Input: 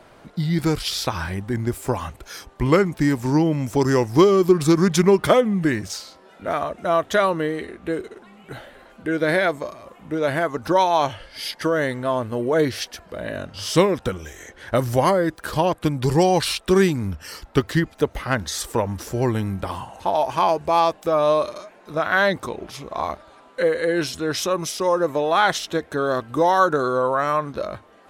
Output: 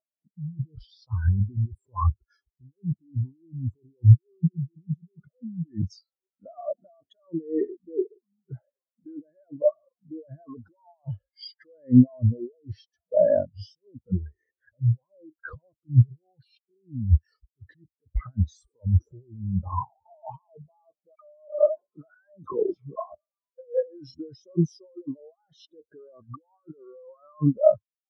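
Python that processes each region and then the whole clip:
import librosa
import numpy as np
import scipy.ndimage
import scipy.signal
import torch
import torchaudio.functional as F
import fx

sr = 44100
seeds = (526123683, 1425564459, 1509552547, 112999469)

y = fx.chain(x, sr, fx.dispersion(late='lows', ms=76.0, hz=1400.0),
    fx.sustainer(db_per_s=66.0), at=(21.15, 23.12))
y = scipy.signal.sosfilt(scipy.signal.butter(2, 50.0, 'highpass', fs=sr, output='sos'), y)
y = fx.over_compress(y, sr, threshold_db=-30.0, ratio=-1.0)
y = fx.spectral_expand(y, sr, expansion=4.0)
y = y * librosa.db_to_amplitude(6.0)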